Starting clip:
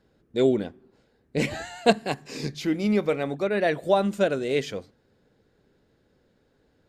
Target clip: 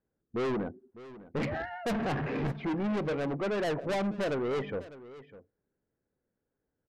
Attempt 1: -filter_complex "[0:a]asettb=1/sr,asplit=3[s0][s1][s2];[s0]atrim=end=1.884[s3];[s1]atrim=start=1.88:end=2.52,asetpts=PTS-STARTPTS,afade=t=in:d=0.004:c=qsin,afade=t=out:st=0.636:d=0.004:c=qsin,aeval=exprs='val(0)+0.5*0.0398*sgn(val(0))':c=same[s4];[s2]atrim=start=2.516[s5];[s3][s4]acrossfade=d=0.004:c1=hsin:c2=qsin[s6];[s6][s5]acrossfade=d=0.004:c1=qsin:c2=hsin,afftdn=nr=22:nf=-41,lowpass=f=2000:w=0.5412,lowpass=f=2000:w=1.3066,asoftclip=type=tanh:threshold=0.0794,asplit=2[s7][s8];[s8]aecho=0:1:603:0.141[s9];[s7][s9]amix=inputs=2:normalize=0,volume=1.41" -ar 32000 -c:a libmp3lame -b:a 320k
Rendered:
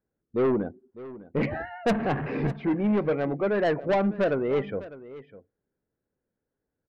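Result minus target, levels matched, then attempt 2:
saturation: distortion -5 dB
-filter_complex "[0:a]asettb=1/sr,asplit=3[s0][s1][s2];[s0]atrim=end=1.884[s3];[s1]atrim=start=1.88:end=2.52,asetpts=PTS-STARTPTS,afade=t=in:d=0.004:c=qsin,afade=t=out:st=0.636:d=0.004:c=qsin,aeval=exprs='val(0)+0.5*0.0398*sgn(val(0))':c=same[s4];[s2]atrim=start=2.516[s5];[s3][s4]acrossfade=d=0.004:c1=hsin:c2=qsin[s6];[s6][s5]acrossfade=d=0.004:c1=qsin:c2=hsin,afftdn=nr=22:nf=-41,lowpass=f=2000:w=0.5412,lowpass=f=2000:w=1.3066,asoftclip=type=tanh:threshold=0.0266,asplit=2[s7][s8];[s8]aecho=0:1:603:0.141[s9];[s7][s9]amix=inputs=2:normalize=0,volume=1.41" -ar 32000 -c:a libmp3lame -b:a 320k

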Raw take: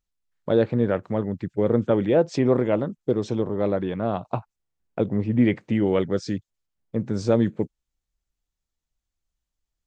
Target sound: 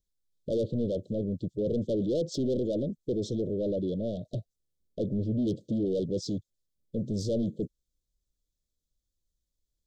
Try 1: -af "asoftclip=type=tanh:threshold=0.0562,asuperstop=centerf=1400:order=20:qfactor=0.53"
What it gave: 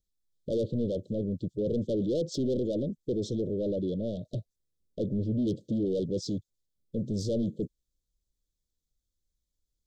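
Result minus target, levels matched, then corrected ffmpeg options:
1 kHz band -4.0 dB
-af "asoftclip=type=tanh:threshold=0.0562,asuperstop=centerf=1400:order=20:qfactor=0.53,equalizer=f=720:t=o:w=0.36:g=5.5"

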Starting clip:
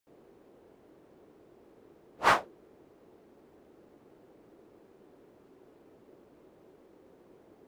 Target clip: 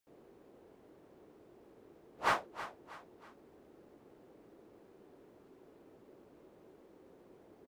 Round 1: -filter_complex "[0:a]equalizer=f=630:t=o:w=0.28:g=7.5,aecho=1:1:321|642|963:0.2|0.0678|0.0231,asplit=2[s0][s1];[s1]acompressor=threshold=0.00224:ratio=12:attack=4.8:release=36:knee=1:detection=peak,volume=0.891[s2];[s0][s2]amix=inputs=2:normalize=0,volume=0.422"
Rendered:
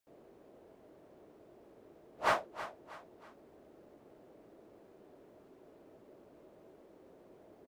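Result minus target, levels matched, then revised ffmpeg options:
500 Hz band +3.0 dB
-filter_complex "[0:a]aecho=1:1:321|642|963:0.2|0.0678|0.0231,asplit=2[s0][s1];[s1]acompressor=threshold=0.00224:ratio=12:attack=4.8:release=36:knee=1:detection=peak,volume=0.891[s2];[s0][s2]amix=inputs=2:normalize=0,volume=0.422"

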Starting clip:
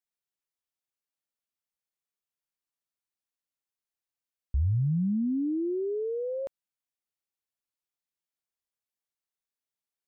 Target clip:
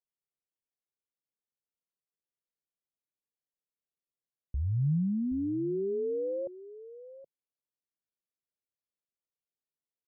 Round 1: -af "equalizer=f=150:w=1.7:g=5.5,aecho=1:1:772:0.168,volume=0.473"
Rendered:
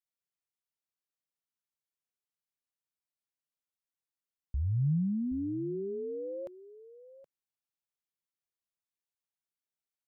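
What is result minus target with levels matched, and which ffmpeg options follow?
500 Hz band -3.5 dB
-af "lowpass=f=510:t=q:w=1.9,equalizer=f=150:w=1.7:g=5.5,aecho=1:1:772:0.168,volume=0.473"

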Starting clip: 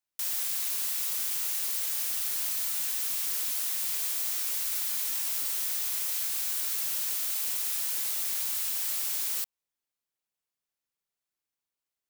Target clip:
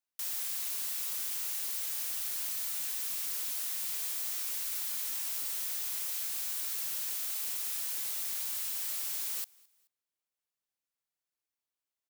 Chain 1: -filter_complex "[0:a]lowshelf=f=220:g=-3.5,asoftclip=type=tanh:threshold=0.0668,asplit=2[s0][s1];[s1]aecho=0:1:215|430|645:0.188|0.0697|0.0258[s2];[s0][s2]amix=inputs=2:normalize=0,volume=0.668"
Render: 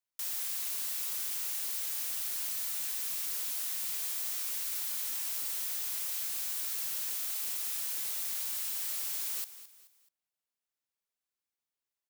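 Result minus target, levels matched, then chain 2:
echo-to-direct +12 dB
-filter_complex "[0:a]lowshelf=f=220:g=-3.5,asoftclip=type=tanh:threshold=0.0668,asplit=2[s0][s1];[s1]aecho=0:1:215|430:0.0473|0.0175[s2];[s0][s2]amix=inputs=2:normalize=0,volume=0.668"

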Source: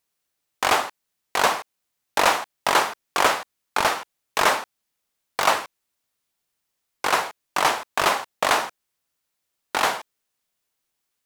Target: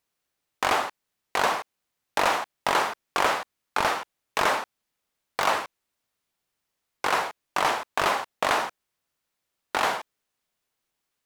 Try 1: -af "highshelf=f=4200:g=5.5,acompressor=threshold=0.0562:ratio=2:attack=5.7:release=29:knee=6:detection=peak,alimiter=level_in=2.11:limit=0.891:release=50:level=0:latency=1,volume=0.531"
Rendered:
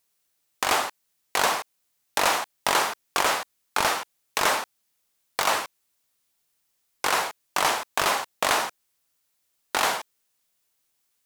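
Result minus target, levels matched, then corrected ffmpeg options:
8 kHz band +6.5 dB
-af "highshelf=f=4200:g=-6,acompressor=threshold=0.0562:ratio=2:attack=5.7:release=29:knee=6:detection=peak,alimiter=level_in=2.11:limit=0.891:release=50:level=0:latency=1,volume=0.531"

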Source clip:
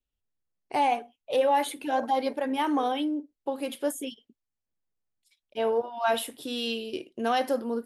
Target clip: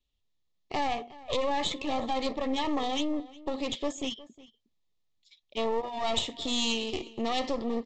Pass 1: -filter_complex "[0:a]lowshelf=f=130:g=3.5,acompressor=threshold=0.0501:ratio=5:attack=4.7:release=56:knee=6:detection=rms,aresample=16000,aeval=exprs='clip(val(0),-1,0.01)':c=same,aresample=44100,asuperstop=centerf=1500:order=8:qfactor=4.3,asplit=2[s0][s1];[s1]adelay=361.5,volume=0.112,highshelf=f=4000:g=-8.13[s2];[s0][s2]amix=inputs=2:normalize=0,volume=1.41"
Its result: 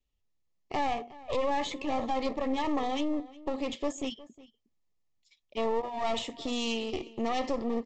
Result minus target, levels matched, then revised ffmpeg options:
4 kHz band -5.0 dB
-filter_complex "[0:a]lowshelf=f=130:g=3.5,acompressor=threshold=0.0501:ratio=5:attack=4.7:release=56:knee=6:detection=rms,equalizer=f=3700:w=2.3:g=10,aresample=16000,aeval=exprs='clip(val(0),-1,0.01)':c=same,aresample=44100,asuperstop=centerf=1500:order=8:qfactor=4.3,asplit=2[s0][s1];[s1]adelay=361.5,volume=0.112,highshelf=f=4000:g=-8.13[s2];[s0][s2]amix=inputs=2:normalize=0,volume=1.41"

